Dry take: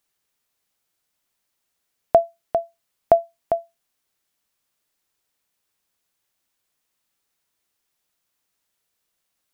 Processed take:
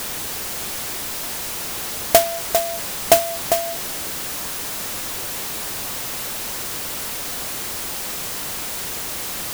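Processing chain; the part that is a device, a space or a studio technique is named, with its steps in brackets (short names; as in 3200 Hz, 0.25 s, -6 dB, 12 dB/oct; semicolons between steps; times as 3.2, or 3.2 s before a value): early CD player with a faulty converter (zero-crossing step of -21 dBFS; clock jitter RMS 0.14 ms); gain +1 dB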